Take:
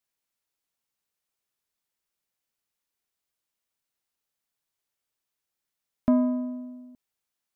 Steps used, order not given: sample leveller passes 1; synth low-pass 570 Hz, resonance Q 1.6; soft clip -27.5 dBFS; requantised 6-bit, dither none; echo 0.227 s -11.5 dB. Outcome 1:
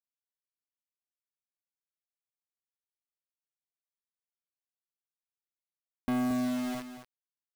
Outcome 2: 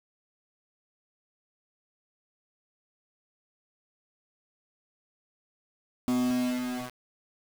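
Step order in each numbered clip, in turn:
sample leveller > synth low-pass > requantised > echo > soft clip; soft clip > synth low-pass > sample leveller > echo > requantised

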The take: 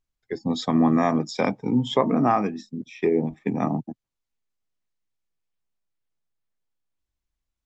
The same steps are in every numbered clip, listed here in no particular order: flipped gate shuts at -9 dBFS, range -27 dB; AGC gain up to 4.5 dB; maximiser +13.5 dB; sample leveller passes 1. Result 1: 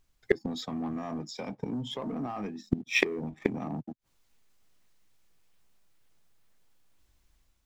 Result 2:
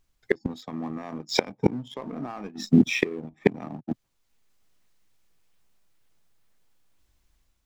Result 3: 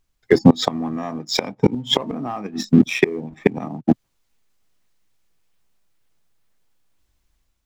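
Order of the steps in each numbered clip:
AGC > maximiser > sample leveller > flipped gate; maximiser > AGC > flipped gate > sample leveller; AGC > sample leveller > flipped gate > maximiser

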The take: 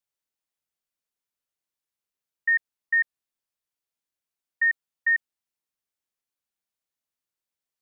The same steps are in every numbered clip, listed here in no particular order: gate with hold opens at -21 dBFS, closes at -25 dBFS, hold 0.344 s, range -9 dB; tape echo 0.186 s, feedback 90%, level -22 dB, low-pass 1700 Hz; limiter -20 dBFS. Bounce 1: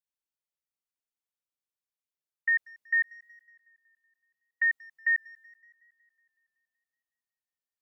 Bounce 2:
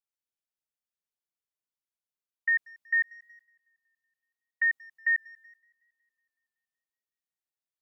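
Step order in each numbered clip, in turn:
gate with hold > tape echo > limiter; tape echo > gate with hold > limiter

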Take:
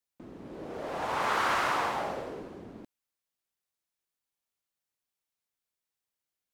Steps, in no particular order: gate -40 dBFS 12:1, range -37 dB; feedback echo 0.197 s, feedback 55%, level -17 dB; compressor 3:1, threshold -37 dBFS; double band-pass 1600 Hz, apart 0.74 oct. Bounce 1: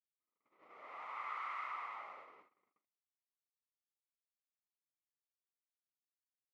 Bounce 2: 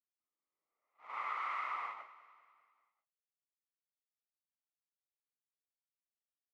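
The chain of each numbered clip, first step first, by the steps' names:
compressor > feedback echo > gate > double band-pass; double band-pass > compressor > gate > feedback echo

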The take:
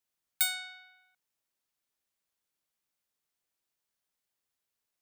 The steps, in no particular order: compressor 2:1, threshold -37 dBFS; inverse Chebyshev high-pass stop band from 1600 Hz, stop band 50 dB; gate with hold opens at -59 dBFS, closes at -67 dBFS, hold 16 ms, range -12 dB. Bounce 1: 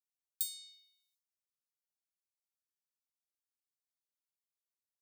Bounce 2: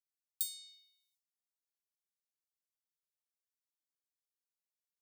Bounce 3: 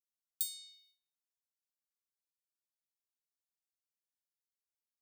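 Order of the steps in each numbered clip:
gate with hold > inverse Chebyshev high-pass > compressor; gate with hold > compressor > inverse Chebyshev high-pass; inverse Chebyshev high-pass > gate with hold > compressor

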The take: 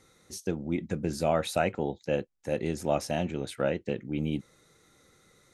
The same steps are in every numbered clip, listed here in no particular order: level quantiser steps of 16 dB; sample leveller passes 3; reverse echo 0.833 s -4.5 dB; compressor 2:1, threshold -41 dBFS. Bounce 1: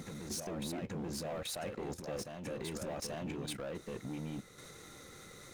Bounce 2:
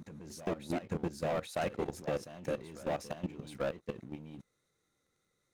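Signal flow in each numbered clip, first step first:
compressor > level quantiser > sample leveller > reverse echo; sample leveller > compressor > reverse echo > level quantiser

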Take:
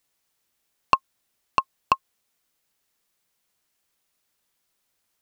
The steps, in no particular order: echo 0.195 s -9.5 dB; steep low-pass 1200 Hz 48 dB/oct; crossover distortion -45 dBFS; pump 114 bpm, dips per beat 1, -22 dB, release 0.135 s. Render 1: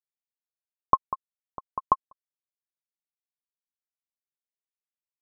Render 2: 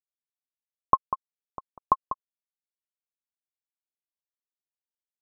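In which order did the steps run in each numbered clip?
echo > pump > crossover distortion > steep low-pass; pump > echo > crossover distortion > steep low-pass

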